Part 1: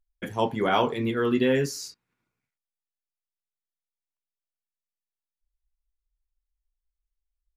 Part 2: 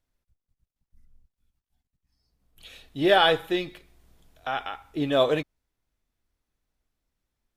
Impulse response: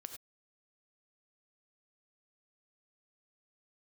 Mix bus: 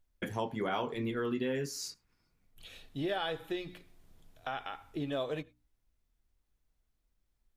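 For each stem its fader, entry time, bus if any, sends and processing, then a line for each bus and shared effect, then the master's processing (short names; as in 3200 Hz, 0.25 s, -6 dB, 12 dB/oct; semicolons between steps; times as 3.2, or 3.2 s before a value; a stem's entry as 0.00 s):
+1.0 dB, 0.00 s, send -19.5 dB, dry
-5.5 dB, 0.00 s, send -15 dB, low shelf 190 Hz +6.5 dB; notches 60/120/180/240/300 Hz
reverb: on, pre-delay 3 ms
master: compressor 3:1, threshold -35 dBFS, peak gain reduction 13.5 dB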